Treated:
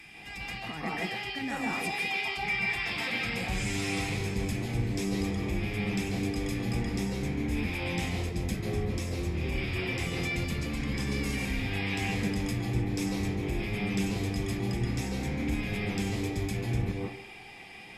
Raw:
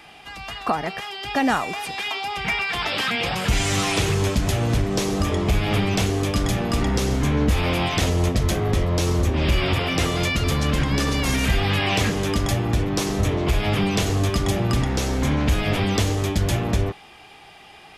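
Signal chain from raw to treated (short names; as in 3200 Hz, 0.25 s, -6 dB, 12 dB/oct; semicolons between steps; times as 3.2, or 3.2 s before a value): reverse; compressor 5:1, threshold -28 dBFS, peak gain reduction 12 dB; reverse; bell 1300 Hz -6.5 dB 1.1 oct; reverb RT60 0.55 s, pre-delay 0.137 s, DRR -0.5 dB; gain -4.5 dB; Opus 64 kbps 48000 Hz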